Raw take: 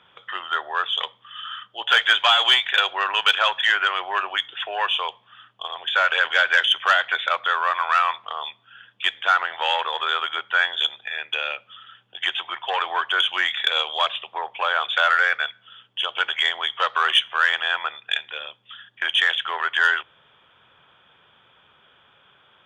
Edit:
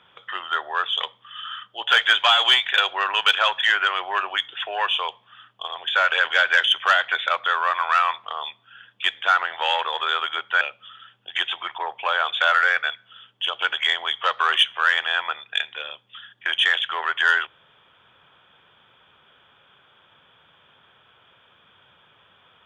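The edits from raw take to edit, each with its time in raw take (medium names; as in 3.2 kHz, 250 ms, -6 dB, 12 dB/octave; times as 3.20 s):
10.61–11.48 s: delete
12.65–14.34 s: delete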